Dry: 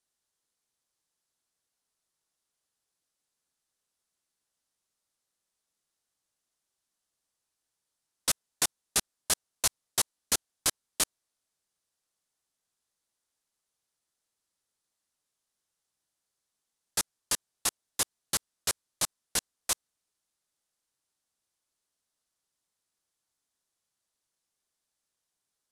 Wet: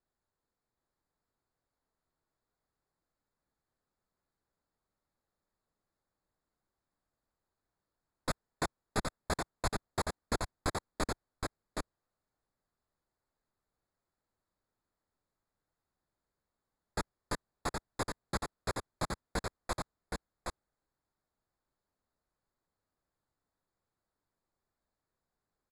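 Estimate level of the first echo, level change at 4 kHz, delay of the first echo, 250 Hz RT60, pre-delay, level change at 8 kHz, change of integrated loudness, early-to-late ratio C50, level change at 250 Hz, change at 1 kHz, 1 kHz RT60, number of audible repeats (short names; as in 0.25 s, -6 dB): -4.0 dB, -11.0 dB, 0.769 s, none, none, -16.0 dB, -8.5 dB, none, +6.0 dB, +3.0 dB, none, 1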